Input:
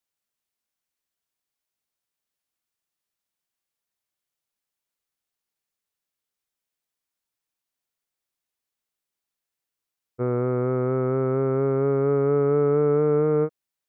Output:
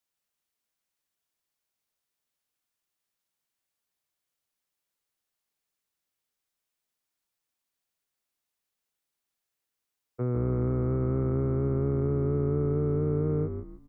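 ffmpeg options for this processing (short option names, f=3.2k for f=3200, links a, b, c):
-filter_complex "[0:a]acrossover=split=260[a][b];[b]acompressor=threshold=-38dB:ratio=4[c];[a][c]amix=inputs=2:normalize=0,asplit=2[d][e];[e]asplit=4[f][g][h][i];[f]adelay=152,afreqshift=-57,volume=-7dB[j];[g]adelay=304,afreqshift=-114,volume=-16.6dB[k];[h]adelay=456,afreqshift=-171,volume=-26.3dB[l];[i]adelay=608,afreqshift=-228,volume=-35.9dB[m];[j][k][l][m]amix=inputs=4:normalize=0[n];[d][n]amix=inputs=2:normalize=0"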